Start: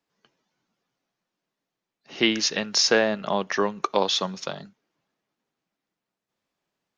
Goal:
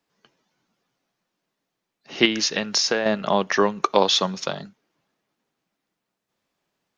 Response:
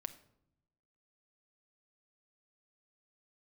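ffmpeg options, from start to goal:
-filter_complex "[0:a]asettb=1/sr,asplit=3[a][b][c];[a]atrim=end=2.254[d];[b]atrim=start=2.25:end=3.06,asetpts=PTS-STARTPTS,afade=t=in:d=0.004:c=qsin,afade=t=out:st=0.806:d=0.004:c=qsin,acompressor=threshold=-23dB:ratio=6[e];[c]atrim=start=3.056[f];[d][e]acrossfade=d=0.004:c1=hsin:c2=qsin[g];[g][f]acrossfade=d=0.004:c1=qsin:c2=hsin,volume=4.5dB"

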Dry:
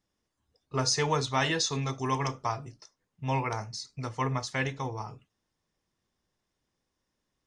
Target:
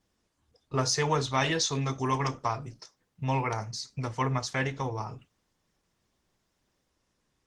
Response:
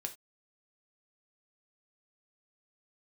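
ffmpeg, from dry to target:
-filter_complex "[0:a]asplit=2[a][b];[b]acompressor=threshold=-42dB:ratio=6,volume=1.5dB[c];[a][c]amix=inputs=2:normalize=0" -ar 48000 -c:a libopus -b:a 16k

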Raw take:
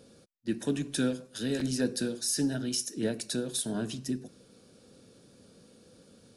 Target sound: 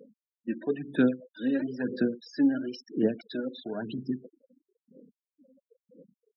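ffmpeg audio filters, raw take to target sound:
-af "aphaser=in_gain=1:out_gain=1:delay=3.8:decay=0.61:speed=1:type=sinusoidal,highpass=200,lowpass=2.5k,afftfilt=real='re*gte(hypot(re,im),0.0126)':imag='im*gte(hypot(re,im),0.0126)':win_size=1024:overlap=0.75"

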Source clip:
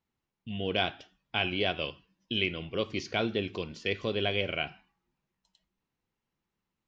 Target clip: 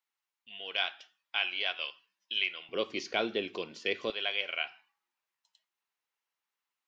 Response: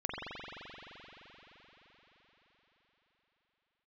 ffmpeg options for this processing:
-af "asetnsamples=n=441:p=0,asendcmd='2.69 highpass f 320;4.1 highpass f 940',highpass=1.1k"

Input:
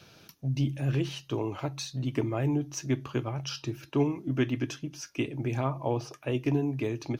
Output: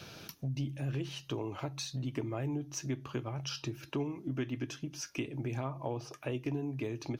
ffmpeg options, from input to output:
-af "acompressor=threshold=-45dB:ratio=2.5,volume=5.5dB"

